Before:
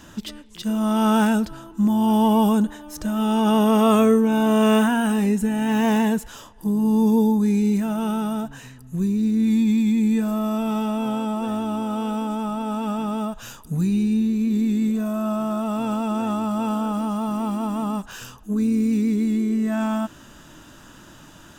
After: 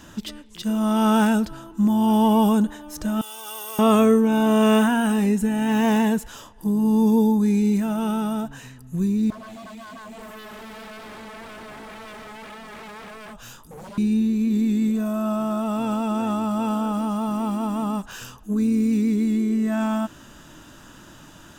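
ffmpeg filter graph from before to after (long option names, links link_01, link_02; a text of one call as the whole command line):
ffmpeg -i in.wav -filter_complex "[0:a]asettb=1/sr,asplit=3[link_01][link_02][link_03];[link_01]atrim=end=3.214[link_04];[link_02]atrim=start=3.21:end=3.79,asetpts=PTS-STARTPTS,afade=type=in:duration=0.004:curve=qsin,afade=type=out:start_time=0.576:duration=0.004:curve=qsin,acrusher=bits=8:mode=log:mix=0:aa=0.000001,aderivative,aecho=1:1:2.6:0.79,atrim=end_sample=25578[link_05];[link_03]atrim=start=3.786[link_06];[link_04][link_05]acrossfade=duration=0.004:curve1=hsin:curve2=qsin[link_07];[link_07][link_06]acrossfade=duration=0.004:curve1=qsin:curve2=hsin,asettb=1/sr,asplit=3[link_08][link_09][link_10];[link_08]atrim=end=9.304[link_11];[link_09]atrim=start=9.3:end=13.98,asetpts=PTS-STARTPTS,afade=type=in:duration=0.004:curve=qsin,afade=type=out:start_time=4.676:duration=0.004:curve=qsin,acompressor=threshold=-28dB:ratio=2:attack=3.2:release=140:knee=1:detection=peak,flanger=delay=18.5:depth=7:speed=1.8,aeval=exprs='0.0188*(abs(mod(val(0)/0.0188+3,4)-2)-1)':channel_layout=same[link_12];[link_10]atrim=start=13.976[link_13];[link_11][link_12]acrossfade=duration=0.004:curve1=hsin:curve2=qsin[link_14];[link_14][link_13]acrossfade=duration=0.004:curve1=qsin:curve2=hsin" out.wav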